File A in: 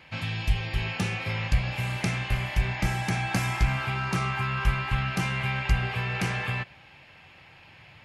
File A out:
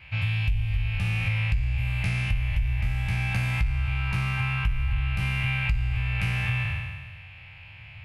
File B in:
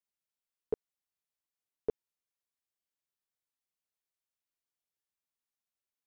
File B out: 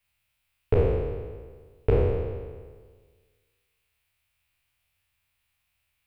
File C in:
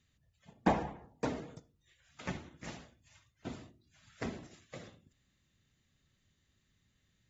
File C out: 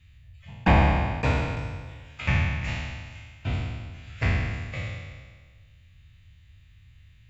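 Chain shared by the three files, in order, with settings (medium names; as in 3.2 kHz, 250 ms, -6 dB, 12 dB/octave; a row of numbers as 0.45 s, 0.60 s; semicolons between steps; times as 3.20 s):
spectral sustain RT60 1.59 s; saturation -13.5 dBFS; resonant low shelf 140 Hz +14 dB, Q 1.5; compression 6:1, threshold -17 dBFS; fifteen-band graphic EQ 400 Hz -7 dB, 2.5 kHz +11 dB, 6.3 kHz -8 dB; normalise loudness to -27 LUFS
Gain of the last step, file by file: -5.5 dB, +12.5 dB, +6.0 dB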